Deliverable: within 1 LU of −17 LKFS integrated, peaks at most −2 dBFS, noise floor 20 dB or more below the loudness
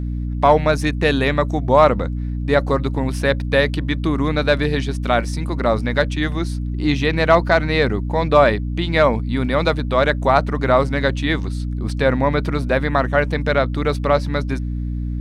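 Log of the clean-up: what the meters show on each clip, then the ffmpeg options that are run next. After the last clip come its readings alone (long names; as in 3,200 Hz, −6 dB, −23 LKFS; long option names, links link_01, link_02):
mains hum 60 Hz; hum harmonics up to 300 Hz; level of the hum −21 dBFS; integrated loudness −18.5 LKFS; sample peak −1.0 dBFS; target loudness −17.0 LKFS
→ -af "bandreject=frequency=60:width_type=h:width=6,bandreject=frequency=120:width_type=h:width=6,bandreject=frequency=180:width_type=h:width=6,bandreject=frequency=240:width_type=h:width=6,bandreject=frequency=300:width_type=h:width=6"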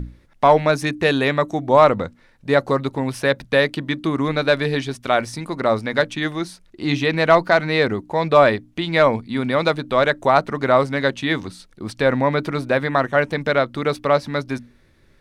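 mains hum none found; integrated loudness −19.5 LKFS; sample peak −2.0 dBFS; target loudness −17.0 LKFS
→ -af "volume=2.5dB,alimiter=limit=-2dB:level=0:latency=1"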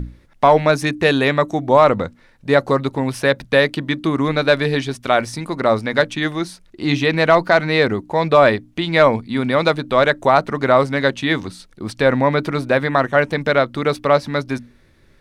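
integrated loudness −17.0 LKFS; sample peak −2.0 dBFS; background noise floor −52 dBFS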